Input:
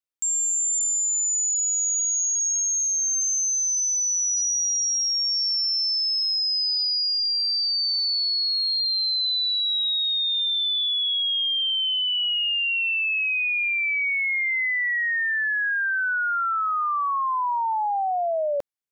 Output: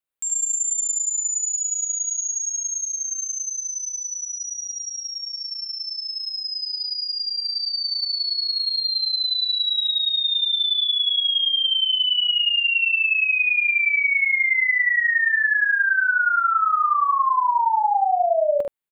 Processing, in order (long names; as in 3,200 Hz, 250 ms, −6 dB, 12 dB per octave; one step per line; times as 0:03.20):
parametric band 5,600 Hz −12.5 dB 0.59 octaves
on a send: ambience of single reflections 46 ms −7.5 dB, 75 ms −4 dB
on the sum: level +3 dB